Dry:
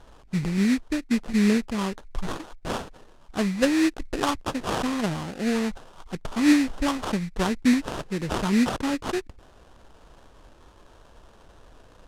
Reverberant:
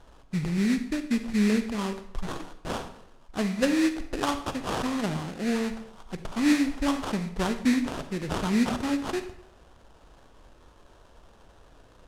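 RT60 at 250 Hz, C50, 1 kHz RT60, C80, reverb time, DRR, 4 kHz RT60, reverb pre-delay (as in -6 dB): 0.75 s, 10.5 dB, 0.75 s, 13.5 dB, 0.75 s, 9.0 dB, 0.60 s, 38 ms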